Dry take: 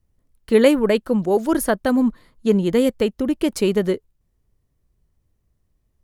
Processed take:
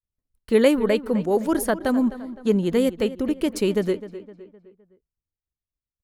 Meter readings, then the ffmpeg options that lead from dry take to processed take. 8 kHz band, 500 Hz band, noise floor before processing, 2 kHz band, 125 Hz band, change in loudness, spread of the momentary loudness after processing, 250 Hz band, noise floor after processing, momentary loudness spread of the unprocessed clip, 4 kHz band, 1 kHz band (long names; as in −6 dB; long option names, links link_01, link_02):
−3.0 dB, −3.0 dB, −70 dBFS, −3.0 dB, −3.0 dB, −3.0 dB, 9 LU, −3.0 dB, below −85 dBFS, 7 LU, −3.0 dB, −3.0 dB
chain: -filter_complex "[0:a]agate=range=-33dB:threshold=-50dB:ratio=3:detection=peak,asplit=2[link_01][link_02];[link_02]adelay=257,lowpass=frequency=3100:poles=1,volume=-14.5dB,asplit=2[link_03][link_04];[link_04]adelay=257,lowpass=frequency=3100:poles=1,volume=0.46,asplit=2[link_05][link_06];[link_06]adelay=257,lowpass=frequency=3100:poles=1,volume=0.46,asplit=2[link_07][link_08];[link_08]adelay=257,lowpass=frequency=3100:poles=1,volume=0.46[link_09];[link_01][link_03][link_05][link_07][link_09]amix=inputs=5:normalize=0,volume=-3dB"